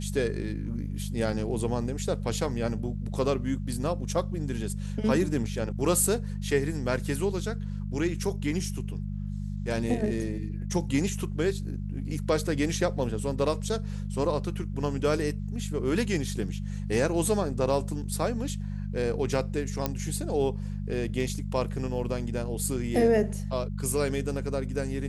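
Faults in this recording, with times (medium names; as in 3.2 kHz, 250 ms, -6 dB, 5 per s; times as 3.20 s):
hum 50 Hz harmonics 4 -33 dBFS
19.86 s: pop -11 dBFS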